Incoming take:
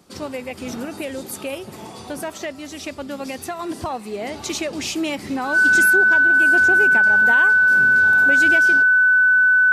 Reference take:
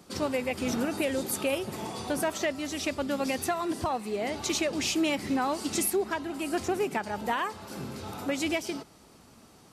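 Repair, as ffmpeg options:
-af "bandreject=f=1.5k:w=30,asetnsamples=n=441:p=0,asendcmd='3.59 volume volume -3dB',volume=0dB"

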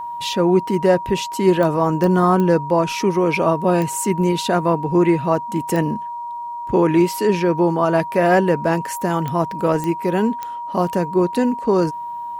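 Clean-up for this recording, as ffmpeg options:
-af "adeclick=t=4,bandreject=f=950:w=30"

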